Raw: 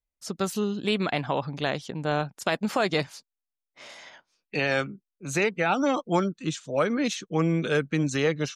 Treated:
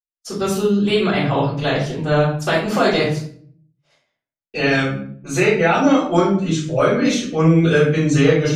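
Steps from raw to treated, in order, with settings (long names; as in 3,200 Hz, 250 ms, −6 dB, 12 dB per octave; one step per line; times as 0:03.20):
noise gate −41 dBFS, range −45 dB
low-shelf EQ 240 Hz +4 dB
rectangular room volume 63 cubic metres, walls mixed, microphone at 3.6 metres
level −6 dB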